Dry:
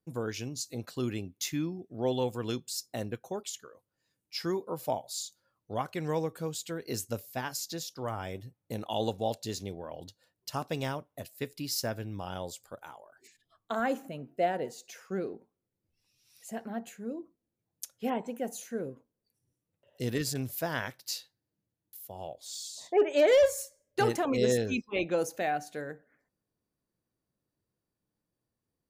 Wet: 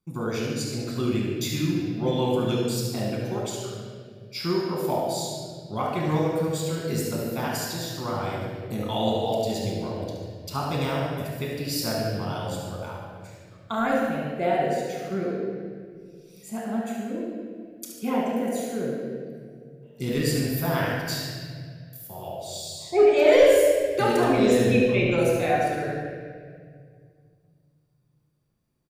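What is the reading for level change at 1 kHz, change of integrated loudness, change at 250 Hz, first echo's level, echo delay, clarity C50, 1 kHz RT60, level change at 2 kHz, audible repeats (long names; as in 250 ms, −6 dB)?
+7.5 dB, +7.5 dB, +9.5 dB, −6.5 dB, 72 ms, −1.0 dB, 1.7 s, +7.5 dB, 1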